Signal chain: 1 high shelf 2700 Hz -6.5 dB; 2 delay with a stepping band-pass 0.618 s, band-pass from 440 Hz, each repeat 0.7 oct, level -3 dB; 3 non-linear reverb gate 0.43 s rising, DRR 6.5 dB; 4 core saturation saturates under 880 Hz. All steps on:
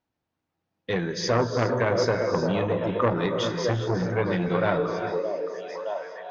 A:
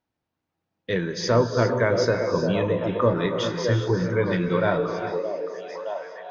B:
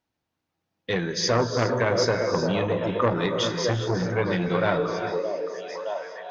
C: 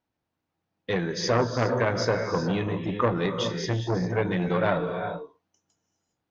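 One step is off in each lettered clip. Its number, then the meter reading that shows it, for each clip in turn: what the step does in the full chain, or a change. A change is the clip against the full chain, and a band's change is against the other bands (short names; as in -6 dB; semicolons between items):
4, crest factor change -2.0 dB; 1, 4 kHz band +4.5 dB; 2, 500 Hz band -2.0 dB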